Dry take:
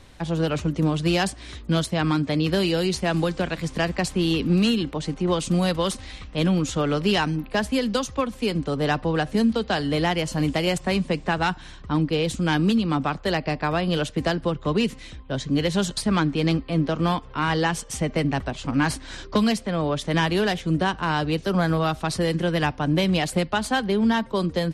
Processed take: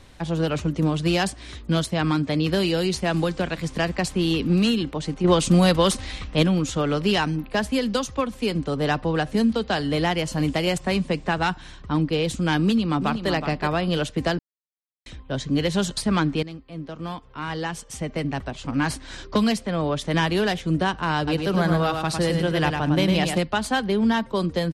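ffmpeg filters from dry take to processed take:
ffmpeg -i in.wav -filter_complex "[0:a]asettb=1/sr,asplit=3[link_01][link_02][link_03];[link_01]atrim=end=5.244[link_04];[link_02]atrim=start=5.24:end=6.43,asetpts=PTS-STARTPTS,afade=type=in:duration=0.004:curve=qsin,afade=type=out:start_time=1.186:duration=0.004:curve=qsin,acontrast=31[link_05];[link_03]atrim=start=6.426[link_06];[link_04][link_05]acrossfade=duration=0.004:curve1=hsin:curve2=qsin[link_07];[link_07][link_06]acrossfade=duration=0.004:curve1=qsin:curve2=hsin,asplit=2[link_08][link_09];[link_09]afade=type=in:start_time=12.64:duration=0.01,afade=type=out:start_time=13.3:duration=0.01,aecho=0:1:370|740:0.398107|0.0597161[link_10];[link_08][link_10]amix=inputs=2:normalize=0,asettb=1/sr,asplit=3[link_11][link_12][link_13];[link_11]atrim=end=21.174[link_14];[link_12]atrim=start=21.17:end=23.38,asetpts=PTS-STARTPTS,afade=type=in:duration=0.004:curve=qsin,afade=type=out:start_time=2.206:duration=0.004:curve=qsin,aecho=1:1:104|208|312:0.562|0.141|0.0351,atrim=end_sample=97461[link_15];[link_13]atrim=start=23.376[link_16];[link_14][link_15]acrossfade=duration=0.004:curve1=hsin:curve2=qsin[link_17];[link_17][link_16]acrossfade=duration=0.004:curve1=qsin:curve2=hsin,asplit=4[link_18][link_19][link_20][link_21];[link_18]atrim=end=14.39,asetpts=PTS-STARTPTS,afade=type=out:start_time=14.386:duration=0.004:curve=hsin[link_22];[link_19]atrim=start=14.39:end=15.06,asetpts=PTS-STARTPTS,volume=0[link_23];[link_20]atrim=start=15.06:end=16.43,asetpts=PTS-STARTPTS,afade=type=in:duration=0.004:curve=hsin,afade=type=out:start_time=1.366:duration=0.004:curve=hsin:silence=0.141254[link_24];[link_21]atrim=start=16.43,asetpts=PTS-STARTPTS,afade=type=in:duration=2.98:silence=0.141254[link_25];[link_22][link_23][link_24][link_25]concat=n=4:v=0:a=1" out.wav

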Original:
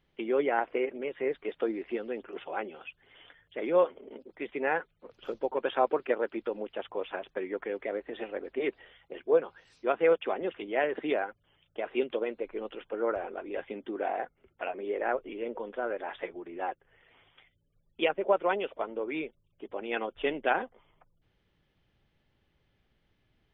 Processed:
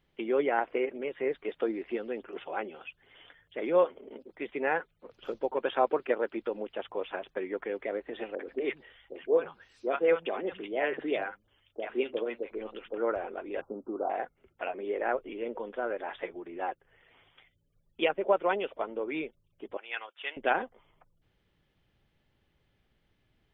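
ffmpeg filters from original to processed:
ffmpeg -i in.wav -filter_complex "[0:a]asettb=1/sr,asplit=3[link_01][link_02][link_03];[link_01]atrim=end=8.354[link_04];[link_02]atrim=start=8.35:end=12.98,asetpts=PTS-STARTPTS,afade=type=in:duration=0.004:curve=qsin,afade=type=out:start_time=4.626:duration=0.004:curve=qsin,acrossover=split=160|780[link_05][link_06][link_07];[link_07]adelay=40[link_08];[link_05]adelay=110[link_09];[link_09][link_06][link_08]amix=inputs=3:normalize=0,atrim=end_sample=204183[link_10];[link_03]atrim=start=12.976[link_11];[link_04][link_10]acrossfade=duration=0.004:curve1=hsin:curve2=qsin[link_12];[link_12][link_11]acrossfade=duration=0.004:curve1=qsin:curve2=hsin,asettb=1/sr,asplit=3[link_13][link_14][link_15];[link_13]atrim=end=13.614[link_16];[link_14]atrim=start=13.61:end=14.1,asetpts=PTS-STARTPTS,afade=type=in:duration=0.004:curve=qsin,afade=type=out:start_time=0.486:duration=0.004:curve=qsin,asuperstop=centerf=2600:order=20:qfactor=0.76[link_17];[link_15]atrim=start=14.096[link_18];[link_16][link_17]acrossfade=duration=0.004:curve1=hsin:curve2=qsin[link_19];[link_19][link_18]acrossfade=duration=0.004:curve1=qsin:curve2=hsin,asettb=1/sr,asplit=3[link_20][link_21][link_22];[link_20]atrim=end=19.774[link_23];[link_21]atrim=start=19.77:end=20.37,asetpts=PTS-STARTPTS,afade=type=in:duration=0.004:curve=qsin,afade=type=out:start_time=0.596:duration=0.004:curve=qsin,highpass=1300[link_24];[link_22]atrim=start=20.366[link_25];[link_23][link_24]acrossfade=duration=0.004:curve1=hsin:curve2=qsin[link_26];[link_26][link_25]acrossfade=duration=0.004:curve1=qsin:curve2=hsin" out.wav

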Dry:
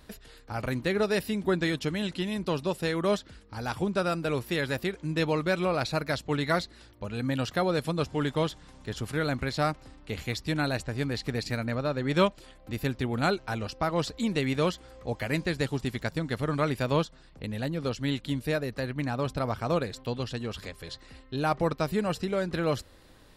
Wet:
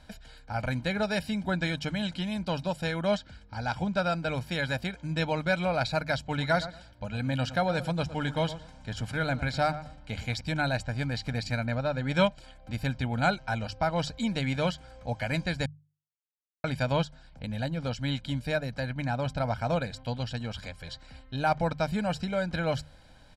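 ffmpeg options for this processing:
ffmpeg -i in.wav -filter_complex "[0:a]asettb=1/sr,asplit=3[link_01][link_02][link_03];[link_01]atrim=end=3.054[link_04];[link_02]atrim=start=3.05:end=4.35,asetpts=PTS-STARTPTS,afade=type=in:duration=0.004:curve=qsin,afade=type=out:start_time=1.296:duration=0.004:curve=qsin,lowpass=7900[link_05];[link_03]atrim=start=4.346[link_06];[link_04][link_05]acrossfade=duration=0.004:curve1=hsin:curve2=qsin[link_07];[link_07][link_06]acrossfade=duration=0.004:curve1=qsin:curve2=hsin,asettb=1/sr,asplit=3[link_08][link_09][link_10];[link_08]atrim=end=6.194[link_11];[link_09]atrim=start=6.19:end=10.41,asetpts=PTS-STARTPTS,afade=type=in:duration=0.004:curve=qsin,afade=type=out:start_time=4.216:duration=0.004:curve=qsin,asplit=2[link_12][link_13];[link_13]adelay=113,lowpass=frequency=2000:poles=1,volume=-13dB,asplit=2[link_14][link_15];[link_15]adelay=113,lowpass=frequency=2000:poles=1,volume=0.23,asplit=2[link_16][link_17];[link_17]adelay=113,lowpass=frequency=2000:poles=1,volume=0.23[link_18];[link_12][link_14][link_16][link_18]amix=inputs=4:normalize=0,atrim=end_sample=186102[link_19];[link_10]atrim=start=10.406[link_20];[link_11][link_19]acrossfade=duration=0.004:curve1=hsin:curve2=qsin[link_21];[link_21][link_20]acrossfade=duration=0.004:curve1=qsin:curve2=hsin,asplit=3[link_22][link_23][link_24];[link_22]atrim=end=15.66,asetpts=PTS-STARTPTS,afade=type=out:start_time=15.656:duration=0.004:curve=hsin[link_25];[link_23]atrim=start=15.66:end=16.64,asetpts=PTS-STARTPTS,volume=0[link_26];[link_24]atrim=start=16.64,asetpts=PTS-STARTPTS,afade=type=in:duration=0.004:curve=hsin[link_27];[link_25][link_26][link_27]concat=n=3:v=0:a=1,lowpass=7800,bandreject=frequency=50:width_type=h:width=6,bandreject=frequency=100:width_type=h:width=6,bandreject=frequency=150:width_type=h:width=6,aecho=1:1:1.3:0.75,volume=-1.5dB" out.wav

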